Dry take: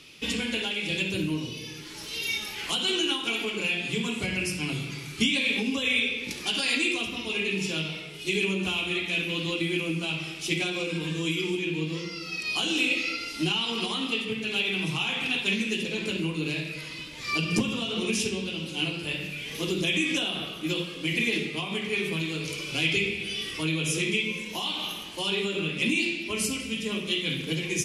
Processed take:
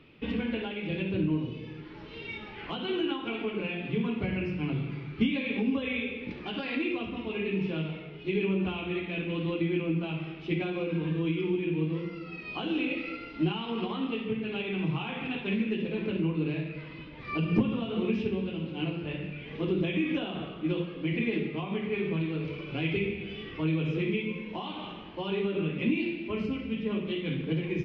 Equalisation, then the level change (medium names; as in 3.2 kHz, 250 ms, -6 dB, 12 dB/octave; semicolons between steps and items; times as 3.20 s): distance through air 320 m; tape spacing loss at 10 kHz 30 dB; +2.5 dB